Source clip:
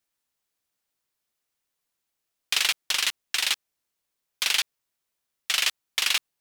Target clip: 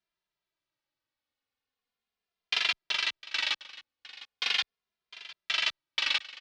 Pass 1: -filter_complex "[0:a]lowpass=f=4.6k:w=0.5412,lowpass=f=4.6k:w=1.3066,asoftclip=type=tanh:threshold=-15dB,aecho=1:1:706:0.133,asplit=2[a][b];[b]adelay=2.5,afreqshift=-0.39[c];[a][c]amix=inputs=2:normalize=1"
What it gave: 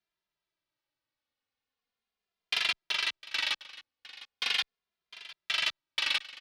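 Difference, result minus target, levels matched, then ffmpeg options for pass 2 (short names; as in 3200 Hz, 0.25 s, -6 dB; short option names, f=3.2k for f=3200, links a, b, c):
soft clip: distortion +14 dB
-filter_complex "[0:a]lowpass=f=4.6k:w=0.5412,lowpass=f=4.6k:w=1.3066,asoftclip=type=tanh:threshold=-6dB,aecho=1:1:706:0.133,asplit=2[a][b];[b]adelay=2.5,afreqshift=-0.39[c];[a][c]amix=inputs=2:normalize=1"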